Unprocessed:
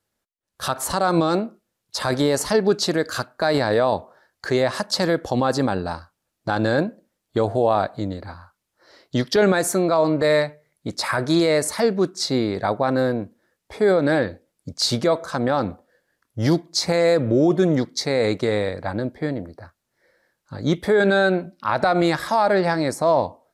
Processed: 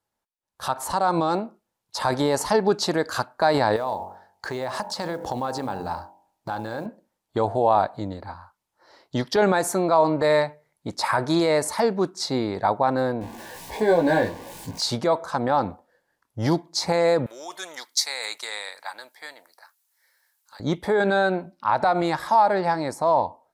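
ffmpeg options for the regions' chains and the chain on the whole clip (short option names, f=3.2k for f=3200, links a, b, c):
-filter_complex "[0:a]asettb=1/sr,asplit=3[a][b][c];[a]atrim=end=3.764[d];[b]atrim=start=3.76:end=6.86,asetpts=PTS-STARTPTS,afade=t=in:d=0.004:c=qsin,afade=t=out:st=3.096:d=0.004:c=qsin,bandreject=f=46.36:t=h:w=4,bandreject=f=92.72:t=h:w=4,bandreject=f=139.08:t=h:w=4,bandreject=f=185.44:t=h:w=4,bandreject=f=231.8:t=h:w=4,bandreject=f=278.16:t=h:w=4,bandreject=f=324.52:t=h:w=4,bandreject=f=370.88:t=h:w=4,bandreject=f=417.24:t=h:w=4,bandreject=f=463.6:t=h:w=4,bandreject=f=509.96:t=h:w=4,bandreject=f=556.32:t=h:w=4,bandreject=f=602.68:t=h:w=4,bandreject=f=649.04:t=h:w=4,bandreject=f=695.4:t=h:w=4,bandreject=f=741.76:t=h:w=4,bandreject=f=788.12:t=h:w=4,bandreject=f=834.48:t=h:w=4,bandreject=f=880.84:t=h:w=4,bandreject=f=927.2:t=h:w=4,bandreject=f=973.56:t=h:w=4,acompressor=threshold=-27dB:ratio=3:attack=3.2:release=140:knee=1:detection=peak,acrusher=bits=7:mode=log:mix=0:aa=0.000001[e];[c]atrim=start=6.856[f];[d][e]acrossfade=d=0.004:c1=hsin:c2=qsin[g];[g][f]acrossfade=d=0.004:c1=qsin:c2=hsin,asettb=1/sr,asplit=3[h][i][j];[h]atrim=end=13.214[k];[i]atrim=start=13.21:end=14.81,asetpts=PTS-STARTPTS,afade=t=in:d=0.004:c=qsin,afade=t=out:st=1.596:d=0.004:c=qsin,aeval=exprs='val(0)+0.5*0.0237*sgn(val(0))':c=same,asuperstop=centerf=1300:order=20:qfactor=5.5,asplit=2[l][m];[m]adelay=18,volume=-3dB[n];[l][n]amix=inputs=2:normalize=0,atrim=end_sample=70560[o];[j]atrim=start=14.806[p];[k][o]acrossfade=d=0.004:c1=hsin:c2=qsin[q];[q][p]acrossfade=d=0.004:c1=qsin:c2=hsin,asettb=1/sr,asplit=3[r][s][t];[r]atrim=end=17.264[u];[s]atrim=start=17.26:end=20.6,asetpts=PTS-STARTPTS,afade=t=in:d=0.004:c=qsin,afade=t=out:st=3.336:d=0.004:c=qsin,highpass=1.4k,aemphasis=mode=production:type=75fm[v];[t]atrim=start=20.596[w];[u][v]acrossfade=d=0.004:c1=hsin:c2=qsin[x];[x][w]acrossfade=d=0.004:c1=qsin:c2=hsin,equalizer=f=890:t=o:w=0.59:g=10.5,dynaudnorm=f=210:g=17:m=11.5dB,volume=-6.5dB"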